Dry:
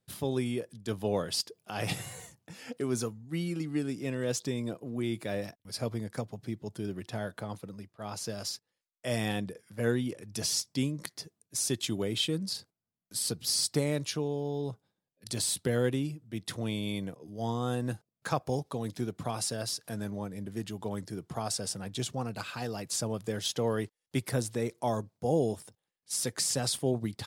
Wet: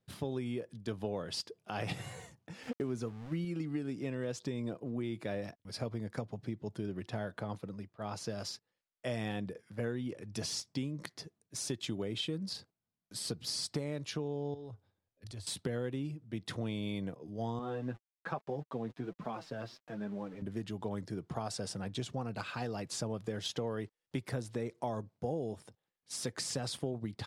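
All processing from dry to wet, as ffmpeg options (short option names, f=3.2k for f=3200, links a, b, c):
-filter_complex "[0:a]asettb=1/sr,asplit=3[a][b][c];[a]atrim=end=2.634[d];[b]atrim=start=2.63:end=3.45,asetpts=PTS-STARTPTS,afade=t=in:d=0.004:c=qsin,afade=t=out:st=0.816:d=0.004:c=qsin,lowshelf=f=500:g=4.5,aeval=exprs='val(0)*gte(abs(val(0)),0.00631)':c=same[e];[c]atrim=start=3.446[f];[d][e]acrossfade=d=0.004:c1=hsin:c2=qsin[g];[g][f]acrossfade=d=0.004:c1=qsin:c2=hsin,asettb=1/sr,asplit=3[h][i][j];[h]atrim=end=14.544[k];[i]atrim=start=14.54:end=15.47,asetpts=PTS-STARTPTS,afade=t=in:d=0.004:c=qsin,afade=t=out:st=0.926:d=0.004:c=qsin,lowshelf=f=120:t=q:w=3:g=7.5,acompressor=threshold=-44dB:ratio=4:attack=3.2:release=140:knee=1:detection=peak[l];[j]atrim=start=15.466[m];[k][l]acrossfade=d=0.004:c1=hsin:c2=qsin[n];[n][m]acrossfade=d=0.004:c1=qsin:c2=hsin,asettb=1/sr,asplit=3[o][p][q];[o]atrim=end=17.594[r];[p]atrim=start=17.59:end=20.42,asetpts=PTS-STARTPTS,afade=t=in:d=0.004:c=qsin,afade=t=out:st=2.826:d=0.004:c=qsin,highpass=150,lowpass=2.8k,aeval=exprs='val(0)*gte(abs(val(0)),0.00355)':c=same,flanger=delay=4.4:depth=4.5:regen=19:speed=1.2:shape=triangular[s];[q]atrim=start=20.416[t];[r][s]acrossfade=d=0.004:c1=hsin:c2=qsin[u];[u][t]acrossfade=d=0.004:c1=qsin:c2=hsin,aemphasis=mode=reproduction:type=50fm,acompressor=threshold=-33dB:ratio=6"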